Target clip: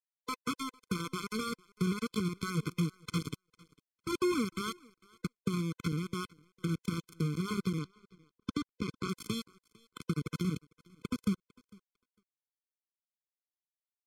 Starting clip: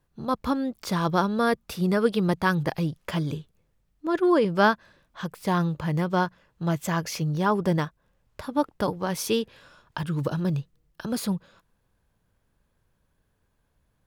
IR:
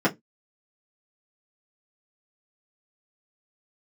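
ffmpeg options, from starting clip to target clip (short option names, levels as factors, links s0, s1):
-af "alimiter=limit=0.119:level=0:latency=1:release=107,acrusher=bits=3:mix=0:aa=0.000001,asubboost=boost=6.5:cutoff=210,agate=range=0.0224:threshold=0.0112:ratio=16:detection=peak,acompressor=threshold=0.0794:ratio=5,highpass=140,aecho=1:1:452|904:0.075|0.0247,aeval=exprs='sgn(val(0))*max(abs(val(0))-0.00211,0)':c=same,asetnsamples=n=441:p=0,asendcmd='7.79 lowpass f 6200;9.09 lowpass f 11000',lowpass=11000,afftfilt=real='re*eq(mod(floor(b*sr/1024/510),2),0)':imag='im*eq(mod(floor(b*sr/1024/510),2),0)':win_size=1024:overlap=0.75,volume=0.668"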